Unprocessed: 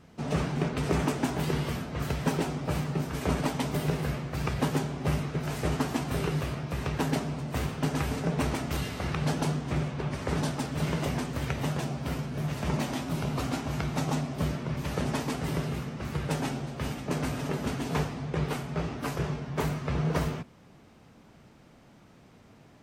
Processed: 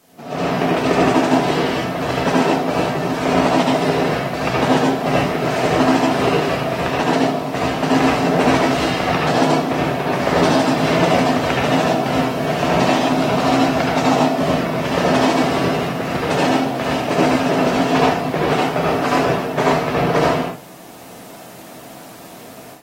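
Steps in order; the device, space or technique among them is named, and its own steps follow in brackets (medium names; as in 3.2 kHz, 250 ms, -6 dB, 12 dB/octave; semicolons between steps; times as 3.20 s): filmed off a television (band-pass 230–6100 Hz; peaking EQ 670 Hz +8 dB 0.3 oct; reverberation RT60 0.35 s, pre-delay 68 ms, DRR -3.5 dB; white noise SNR 29 dB; level rider gain up to 13.5 dB; trim -1 dB; AAC 48 kbps 44.1 kHz)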